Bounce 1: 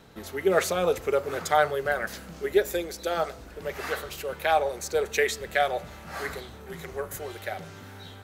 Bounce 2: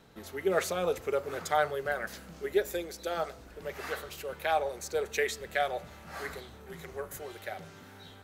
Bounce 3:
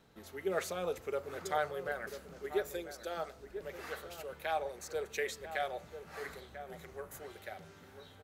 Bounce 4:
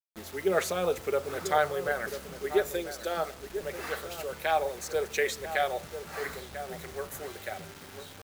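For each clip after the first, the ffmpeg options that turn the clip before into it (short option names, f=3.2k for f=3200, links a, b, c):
-af "bandreject=f=50:t=h:w=6,bandreject=f=100:t=h:w=6,volume=-5.5dB"
-filter_complex "[0:a]asplit=2[a][b];[b]adelay=991.3,volume=-10dB,highshelf=f=4k:g=-22.3[c];[a][c]amix=inputs=2:normalize=0,volume=-6.5dB"
-af "acrusher=bits=8:mix=0:aa=0.000001,volume=8dB"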